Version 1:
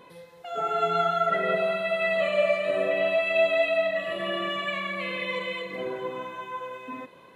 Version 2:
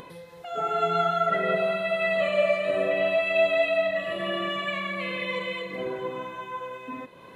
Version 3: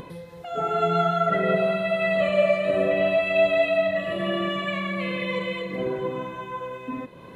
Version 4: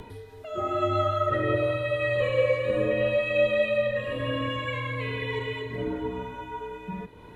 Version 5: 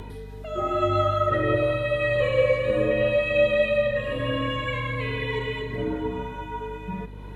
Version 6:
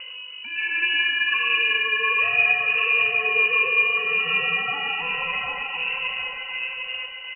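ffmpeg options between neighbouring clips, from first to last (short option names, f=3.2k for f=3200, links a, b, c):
-af "lowshelf=f=150:g=6.5,acompressor=mode=upward:threshold=-39dB:ratio=2.5"
-af "lowshelf=f=350:g=10.5"
-af "afreqshift=-71,volume=-3dB"
-af "aeval=exprs='val(0)+0.00891*(sin(2*PI*50*n/s)+sin(2*PI*2*50*n/s)/2+sin(2*PI*3*50*n/s)/3+sin(2*PI*4*50*n/s)/4+sin(2*PI*5*50*n/s)/5)':c=same,volume=2.5dB"
-af "aecho=1:1:753|1506|2259|3012:0.596|0.191|0.061|0.0195,lowpass=f=2.6k:t=q:w=0.5098,lowpass=f=2.6k:t=q:w=0.6013,lowpass=f=2.6k:t=q:w=0.9,lowpass=f=2.6k:t=q:w=2.563,afreqshift=-3000"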